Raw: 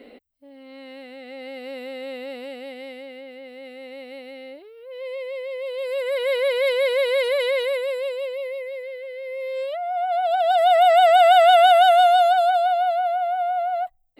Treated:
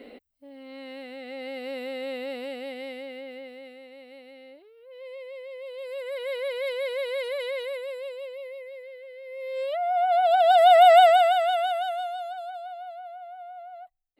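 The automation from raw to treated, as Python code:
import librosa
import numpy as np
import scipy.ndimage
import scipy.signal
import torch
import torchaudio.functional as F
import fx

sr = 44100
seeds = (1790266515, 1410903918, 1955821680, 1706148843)

y = fx.gain(x, sr, db=fx.line((3.37, 0.0), (3.89, -9.0), (9.25, -9.0), (9.81, 1.0), (10.98, 1.0), (11.37, -9.5), (12.17, -18.0)))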